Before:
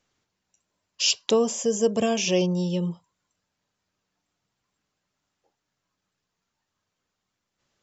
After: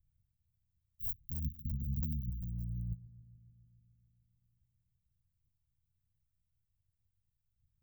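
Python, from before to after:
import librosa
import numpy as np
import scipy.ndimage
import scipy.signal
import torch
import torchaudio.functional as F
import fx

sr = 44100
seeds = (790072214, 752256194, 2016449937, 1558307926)

y = fx.cycle_switch(x, sr, every=3, mode='muted')
y = scipy.signal.sosfilt(scipy.signal.cheby2(4, 80, [590.0, 6800.0], 'bandstop', fs=sr, output='sos'), y)
y = fx.over_compress(y, sr, threshold_db=-45.0, ratio=-1.0)
y = fx.echo_bbd(y, sr, ms=144, stages=2048, feedback_pct=75, wet_db=-20)
y = y * 10.0 ** (8.0 / 20.0)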